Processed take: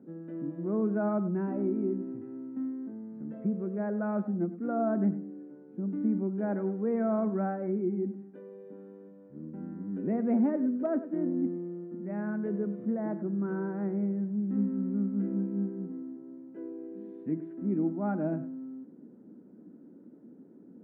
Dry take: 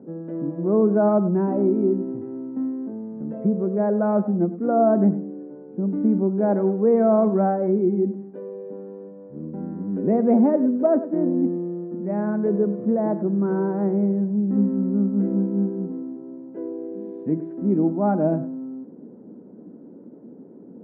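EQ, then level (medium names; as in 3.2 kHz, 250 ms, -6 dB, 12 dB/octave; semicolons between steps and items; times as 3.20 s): bass shelf 340 Hz -8 dB; high-order bell 670 Hz -8 dB; -3.0 dB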